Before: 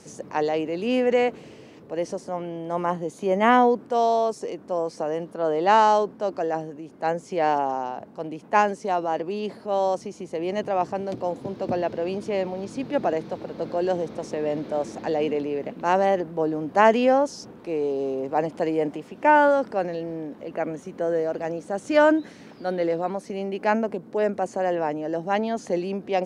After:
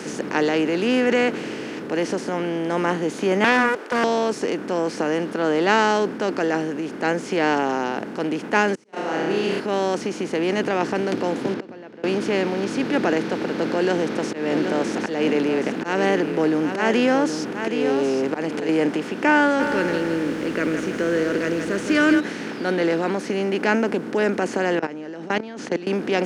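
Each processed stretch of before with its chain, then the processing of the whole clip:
3.44–4.04 steep high-pass 440 Hz + Doppler distortion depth 0.52 ms
8.75–9.6 flutter echo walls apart 5.4 m, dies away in 0.71 s + auto swell 0.714 s + gate -37 dBFS, range -38 dB
11.54–12.04 LPF 1700 Hz 6 dB/oct + flipped gate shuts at -31 dBFS, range -30 dB
13.73–18.69 auto swell 0.217 s + echo 0.772 s -11.5 dB
19.59–22.19 Butterworth band-stop 800 Hz, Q 1.5 + feedback echo 0.163 s, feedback 44%, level -10.5 dB + added noise brown -38 dBFS
24.79–25.87 LPF 6400 Hz + level quantiser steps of 24 dB
whole clip: per-bin compression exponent 0.6; HPF 140 Hz 12 dB/oct; band shelf 760 Hz -8.5 dB 1.3 oct; gain +3 dB

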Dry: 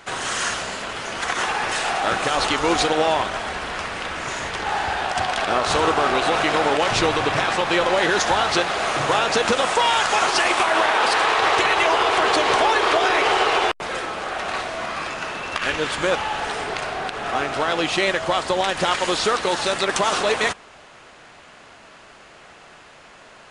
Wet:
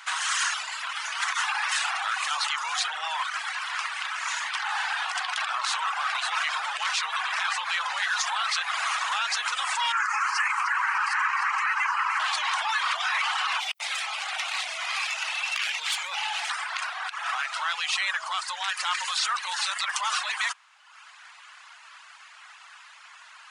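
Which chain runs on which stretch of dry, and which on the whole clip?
9.92–12.2 air absorption 66 m + fixed phaser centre 1500 Hz, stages 4 + echo with dull and thin repeats by turns 0.151 s, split 1300 Hz, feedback 59%, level -4 dB
13.6–16.5 band shelf 1300 Hz -9.5 dB 1.1 oct + tube stage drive 18 dB, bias 0.55 + fast leveller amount 70%
whole clip: reverb removal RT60 0.93 s; limiter -17 dBFS; steep high-pass 950 Hz 36 dB/oct; gain +1.5 dB

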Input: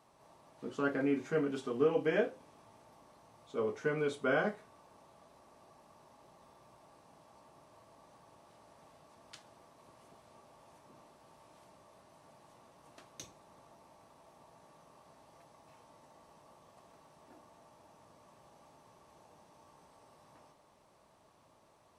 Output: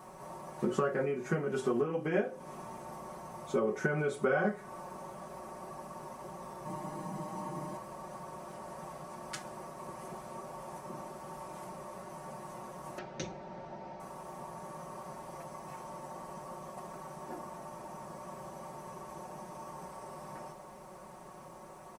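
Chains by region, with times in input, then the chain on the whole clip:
6.65–7.77 bell 240 Hz +14 dB 0.64 oct + comb 6.4 ms, depth 92%
12.98–14 LPF 4800 Hz 24 dB/oct + notch 1100 Hz, Q 5.2
whole clip: compressor 8:1, threshold -42 dBFS; bell 3700 Hz -11 dB 1.2 oct; comb 5.4 ms, depth 89%; gain +14 dB

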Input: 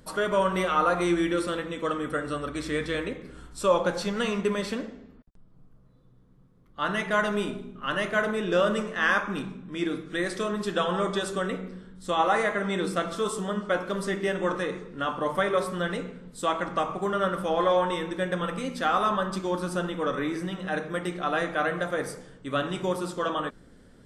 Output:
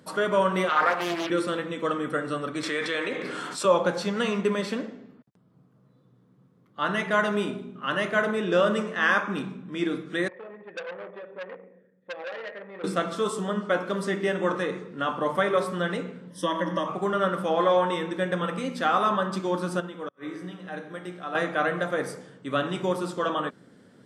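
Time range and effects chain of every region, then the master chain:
0.69–1.3 weighting filter A + Doppler distortion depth 0.66 ms
2.63–3.65 weighting filter A + fast leveller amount 70%
10.28–12.84 vocal tract filter e + core saturation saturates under 2800 Hz
16.3–16.88 compressor 2:1, threshold -30 dBFS + ripple EQ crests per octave 1.2, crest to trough 17 dB
19.8–21.35 resonator 60 Hz, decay 1.2 s, mix 70% + flipped gate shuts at -24 dBFS, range -38 dB
whole clip: HPF 120 Hz 24 dB/oct; high shelf 6500 Hz -5.5 dB; gain +1.5 dB

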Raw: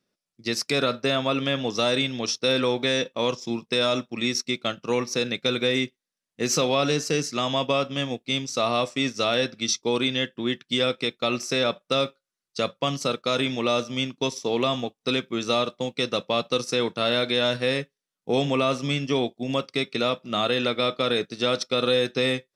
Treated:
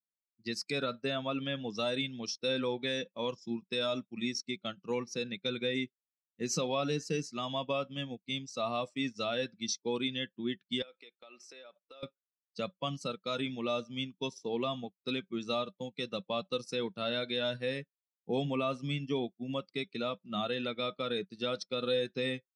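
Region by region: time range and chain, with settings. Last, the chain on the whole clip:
10.82–12.03 HPF 400 Hz + high shelf 5800 Hz -7.5 dB + compressor 8:1, threshold -32 dBFS
whole clip: per-bin expansion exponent 1.5; LPF 8800 Hz 12 dB/oct; bell 190 Hz +9.5 dB 0.34 oct; gain -7.5 dB

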